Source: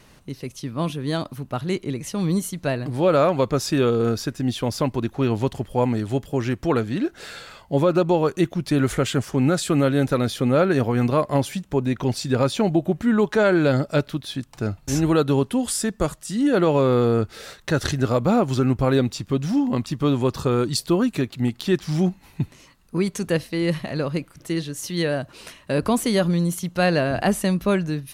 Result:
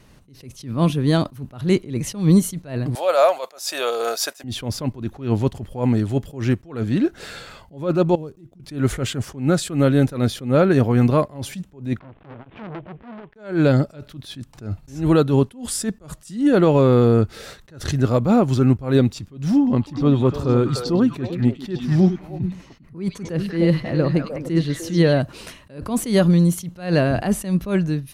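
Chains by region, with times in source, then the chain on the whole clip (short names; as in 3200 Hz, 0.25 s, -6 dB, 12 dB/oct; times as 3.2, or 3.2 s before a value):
2.95–4.44 resonant high-pass 640 Hz, resonance Q 3.4 + tilt +4 dB/oct
8.15–8.6 median filter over 9 samples + bell 1500 Hz -12.5 dB 2.5 oct + compressor 4:1, threshold -34 dBFS
11.99–13.36 CVSD 16 kbps + compressor 10:1, threshold -33 dBFS + core saturation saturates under 1400 Hz
19.57–25.2 high shelf 2800 Hz -9 dB + delay with a stepping band-pass 0.1 s, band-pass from 4300 Hz, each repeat -1.4 oct, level 0 dB
whole clip: low shelf 370 Hz +6.5 dB; AGC; attack slew limiter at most 150 dB/s; gain -3.5 dB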